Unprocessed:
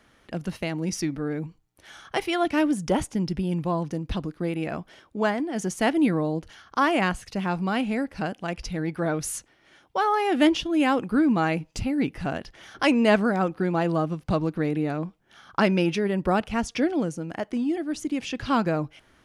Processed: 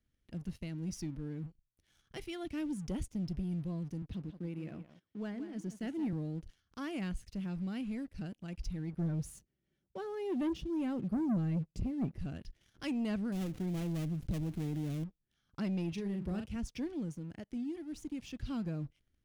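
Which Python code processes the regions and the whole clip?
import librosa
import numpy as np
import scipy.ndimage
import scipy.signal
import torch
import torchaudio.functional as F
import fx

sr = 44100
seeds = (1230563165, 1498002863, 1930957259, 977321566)

y = fx.chain(x, sr, fx.highpass(hz=130.0, slope=12),
    fx.high_shelf(hz=4500.0, db=-10.0),
    fx.echo_single(ms=173, db=-12.0), at=(4.02, 6.13))
y = fx.chain(y, sr, fx.highpass(hz=67.0, slope=12),
    fx.tilt_shelf(db=6.5, hz=920.0),
    fx.comb(ms=5.2, depth=0.44), at=(8.93, 12.19))
y = fx.chain(y, sr, fx.dead_time(dead_ms=0.27),
    fx.env_flatten(amount_pct=50), at=(13.32, 15.04))
y = fx.chain(y, sr, fx.highpass(hz=55.0, slope=24),
    fx.doubler(ms=40.0, db=-7), at=(15.92, 16.56))
y = fx.tone_stack(y, sr, knobs='10-0-1')
y = fx.leveller(y, sr, passes=2)
y = y * 10.0 ** (-1.0 / 20.0)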